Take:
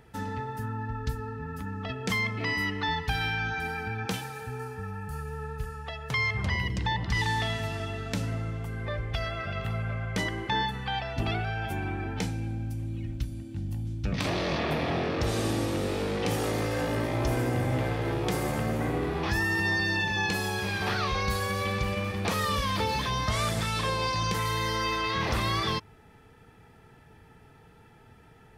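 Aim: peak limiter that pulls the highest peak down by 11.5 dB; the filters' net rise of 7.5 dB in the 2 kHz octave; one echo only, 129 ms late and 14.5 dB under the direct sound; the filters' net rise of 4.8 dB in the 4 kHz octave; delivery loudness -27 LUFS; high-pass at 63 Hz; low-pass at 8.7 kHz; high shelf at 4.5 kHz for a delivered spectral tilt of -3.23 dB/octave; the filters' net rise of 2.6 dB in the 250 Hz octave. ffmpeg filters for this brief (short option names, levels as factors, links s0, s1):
-af "highpass=63,lowpass=8700,equalizer=f=250:t=o:g=3.5,equalizer=f=2000:t=o:g=8.5,equalizer=f=4000:t=o:g=7,highshelf=f=4500:g=-8,alimiter=limit=0.0841:level=0:latency=1,aecho=1:1:129:0.188,volume=1.41"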